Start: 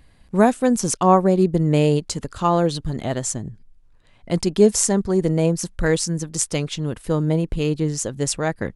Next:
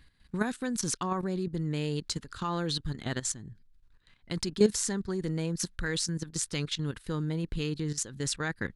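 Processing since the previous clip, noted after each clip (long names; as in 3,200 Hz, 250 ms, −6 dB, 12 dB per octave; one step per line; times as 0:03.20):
graphic EQ with 15 bands 630 Hz −10 dB, 1,600 Hz +7 dB, 4,000 Hz +8 dB
output level in coarse steps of 13 dB
level −5 dB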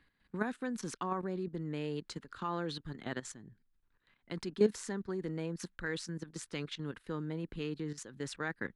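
three-way crossover with the lows and the highs turned down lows −12 dB, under 180 Hz, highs −12 dB, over 2,900 Hz
level −3.5 dB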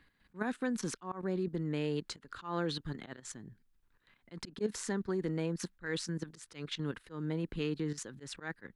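volume swells 166 ms
level +3.5 dB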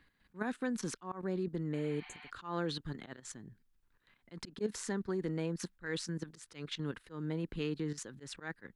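healed spectral selection 0:01.77–0:02.27, 690–6,200 Hz before
level −1.5 dB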